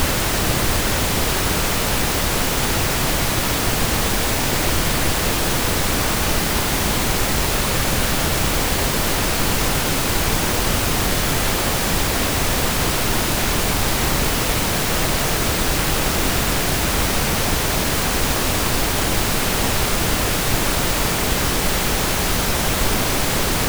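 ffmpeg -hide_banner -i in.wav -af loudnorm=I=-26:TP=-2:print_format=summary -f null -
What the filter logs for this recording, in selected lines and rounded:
Input Integrated:    -18.7 LUFS
Input True Peak:      -4.8 dBTP
Input LRA:             0.1 LU
Input Threshold:     -28.7 LUFS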